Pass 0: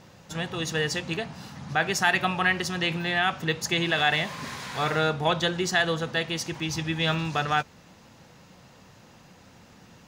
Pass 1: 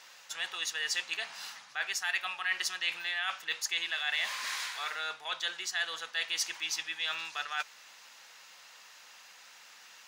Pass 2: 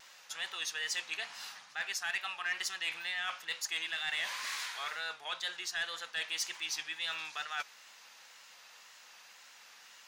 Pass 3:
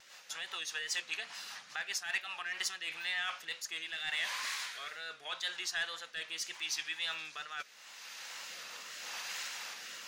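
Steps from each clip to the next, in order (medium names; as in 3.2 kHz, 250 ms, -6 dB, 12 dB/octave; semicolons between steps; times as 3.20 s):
reverse; compression 6:1, threshold -32 dBFS, peak gain reduction 14 dB; reverse; high-pass 1.5 kHz 12 dB/octave; trim +5 dB
saturation -23 dBFS, distortion -19 dB; wow and flutter 69 cents; trim -2 dB
recorder AGC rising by 15 dB/s; rotary cabinet horn 5 Hz, later 0.8 Hz, at 2.18 s; trim +1.5 dB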